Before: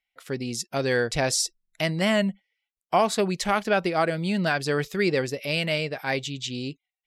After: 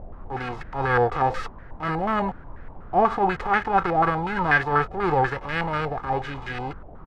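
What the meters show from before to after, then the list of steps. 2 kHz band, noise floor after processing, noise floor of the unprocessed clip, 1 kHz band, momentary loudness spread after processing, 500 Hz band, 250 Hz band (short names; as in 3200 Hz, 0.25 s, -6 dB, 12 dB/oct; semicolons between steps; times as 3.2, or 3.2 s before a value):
+2.5 dB, -42 dBFS, under -85 dBFS, +7.5 dB, 12 LU, -1.0 dB, -2.5 dB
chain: spectral whitening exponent 0.3; transient shaper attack -11 dB, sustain +4 dB; requantised 6-bit, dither none; comb 2.4 ms, depth 57%; added noise brown -40 dBFS; stepped low-pass 8.2 Hz 720–1700 Hz; gain +1.5 dB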